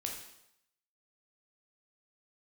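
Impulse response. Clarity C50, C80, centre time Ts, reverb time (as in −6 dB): 4.5 dB, 7.5 dB, 35 ms, 0.80 s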